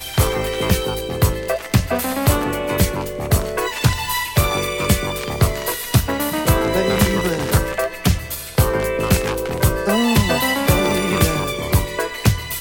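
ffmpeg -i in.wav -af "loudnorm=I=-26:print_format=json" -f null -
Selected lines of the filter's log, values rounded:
"input_i" : "-18.9",
"input_tp" : "-1.4",
"input_lra" : "1.5",
"input_thresh" : "-28.9",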